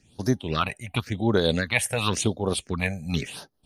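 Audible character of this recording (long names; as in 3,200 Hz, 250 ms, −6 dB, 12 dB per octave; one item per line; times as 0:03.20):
phaser sweep stages 6, 0.93 Hz, lowest notch 300–2,600 Hz
amplitude modulation by smooth noise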